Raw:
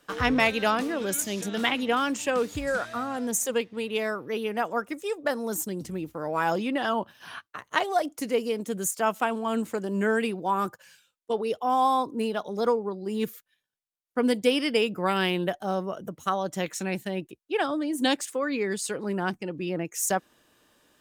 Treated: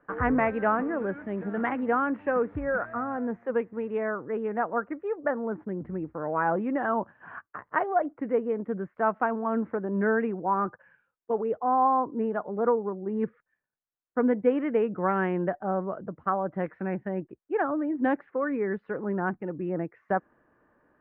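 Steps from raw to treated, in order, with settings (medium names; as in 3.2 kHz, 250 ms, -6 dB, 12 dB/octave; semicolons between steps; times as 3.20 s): steep low-pass 1.8 kHz 36 dB/octave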